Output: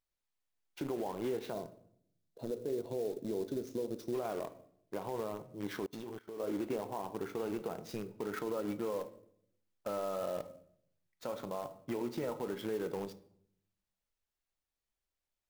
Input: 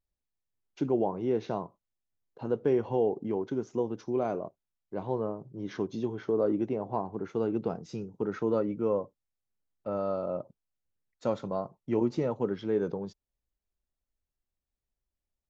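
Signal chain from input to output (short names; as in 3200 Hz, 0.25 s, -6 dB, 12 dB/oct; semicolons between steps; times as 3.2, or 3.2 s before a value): low shelf 370 Hz -11 dB; in parallel at -10 dB: requantised 6-bit, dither none; on the sum: compressor 6:1, threshold -32 dBFS, peak gain reduction 8 dB; 1.53–4.14 spectral gain 700–3400 Hz -13 dB; on a send at -11 dB: reverb RT60 0.70 s, pre-delay 6 ms; on the sum: limiter -30 dBFS, peak gain reduction 7.5 dB; 5.86–6.4 level quantiser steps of 23 dB; clock jitter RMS 0.022 ms; gain +2 dB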